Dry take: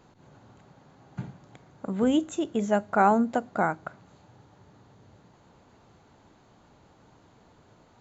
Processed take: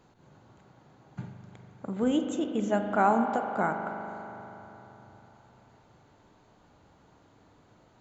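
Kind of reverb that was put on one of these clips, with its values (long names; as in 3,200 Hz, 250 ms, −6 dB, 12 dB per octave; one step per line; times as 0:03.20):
spring reverb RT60 3.6 s, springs 40 ms, chirp 55 ms, DRR 4.5 dB
level −3.5 dB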